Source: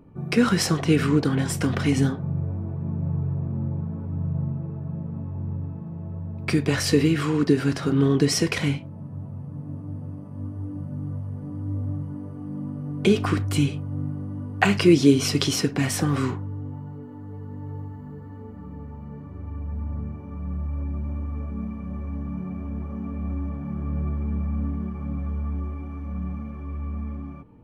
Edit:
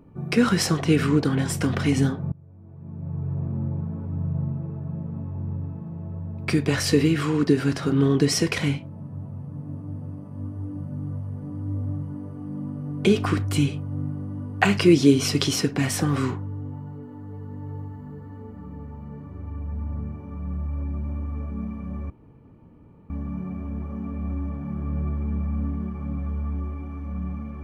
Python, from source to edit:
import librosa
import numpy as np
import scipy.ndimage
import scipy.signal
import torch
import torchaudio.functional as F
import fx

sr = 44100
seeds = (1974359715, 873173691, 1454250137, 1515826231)

y = fx.edit(x, sr, fx.fade_in_from(start_s=2.32, length_s=1.09, curve='qua', floor_db=-22.5),
    fx.insert_room_tone(at_s=22.1, length_s=1.0), tone=tone)